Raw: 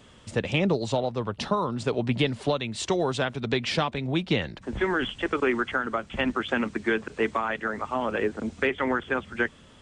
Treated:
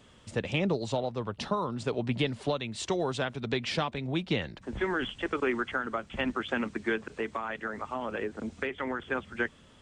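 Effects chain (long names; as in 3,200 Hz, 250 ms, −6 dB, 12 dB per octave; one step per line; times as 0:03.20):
0:06.95–0:09.00: downward compressor 2.5 to 1, threshold −26 dBFS, peak gain reduction 5 dB
level −4.5 dB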